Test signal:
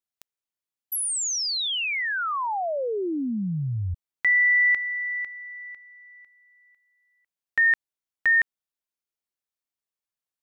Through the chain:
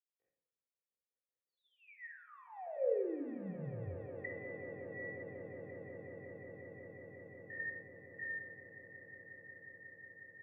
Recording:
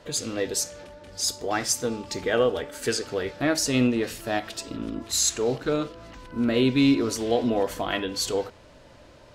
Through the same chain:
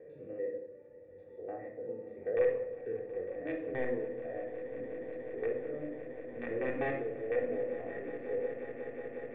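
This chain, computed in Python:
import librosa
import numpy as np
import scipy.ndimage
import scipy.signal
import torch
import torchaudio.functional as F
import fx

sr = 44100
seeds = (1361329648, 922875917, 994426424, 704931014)

p1 = fx.spec_steps(x, sr, hold_ms=100)
p2 = scipy.signal.sosfilt(scipy.signal.butter(2, 76.0, 'highpass', fs=sr, output='sos'), p1)
p3 = fx.env_lowpass_down(p2, sr, base_hz=1100.0, full_db=-22.5)
p4 = fx.dereverb_blind(p3, sr, rt60_s=1.5)
p5 = fx.peak_eq(p4, sr, hz=3200.0, db=-12.5, octaves=2.8)
p6 = (np.mod(10.0 ** (17.5 / 20.0) * p5 + 1.0, 2.0) - 1.0) / 10.0 ** (17.5 / 20.0)
p7 = fx.wow_flutter(p6, sr, seeds[0], rate_hz=0.73, depth_cents=22.0)
p8 = fx.formant_cascade(p7, sr, vowel='e')
p9 = p8 + fx.echo_swell(p8, sr, ms=181, loudest=8, wet_db=-17, dry=0)
y = fx.room_shoebox(p9, sr, seeds[1], volume_m3=2500.0, walls='furnished', distance_m=3.6)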